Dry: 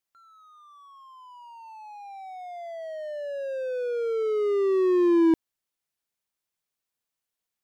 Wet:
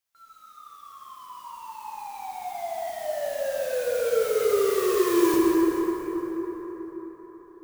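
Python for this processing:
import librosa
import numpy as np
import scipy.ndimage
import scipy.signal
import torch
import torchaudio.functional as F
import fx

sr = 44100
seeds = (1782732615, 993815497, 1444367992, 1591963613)

y = fx.peak_eq(x, sr, hz=250.0, db=-10.5, octaves=1.3)
y = fx.mod_noise(y, sr, seeds[0], snr_db=13)
y = fx.rev_plate(y, sr, seeds[1], rt60_s=5.0, hf_ratio=0.45, predelay_ms=0, drr_db=-5.5)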